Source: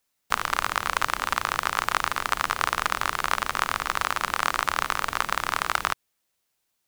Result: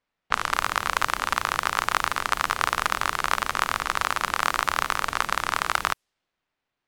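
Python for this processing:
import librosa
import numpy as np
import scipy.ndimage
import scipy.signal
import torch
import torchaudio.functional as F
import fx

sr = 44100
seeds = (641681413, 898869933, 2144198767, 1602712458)

y = fx.quant_dither(x, sr, seeds[0], bits=12, dither='none')
y = fx.env_lowpass(y, sr, base_hz=2500.0, full_db=-22.5)
y = F.gain(torch.from_numpy(y), 1.0).numpy()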